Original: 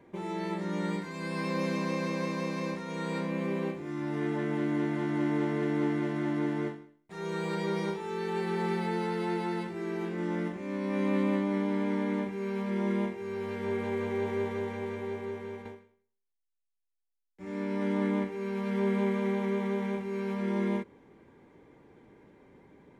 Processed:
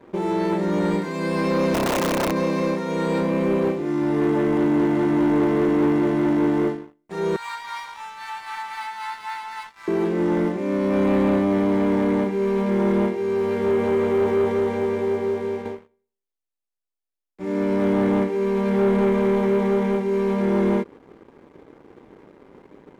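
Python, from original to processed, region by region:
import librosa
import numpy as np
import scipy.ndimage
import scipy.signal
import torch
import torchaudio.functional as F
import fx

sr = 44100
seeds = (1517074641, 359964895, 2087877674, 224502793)

y = fx.chain(x, sr, fx.high_shelf(hz=2900.0, db=-6.5),
    fx.overflow_wrap(gain_db=25.5), at=(1.74, 2.36))
y = fx.chain(y, sr, fx.harmonic_tremolo(hz=3.8, depth_pct=50, crossover_hz=520.0),
    fx.ellip_highpass(hz=920.0, order=4, stop_db=50), at=(7.36, 9.88))
y = fx.curve_eq(y, sr, hz=(120.0, 350.0, 540.0, 1800.0), db=(0, 7, 7, 0))
y = fx.leveller(y, sr, passes=2)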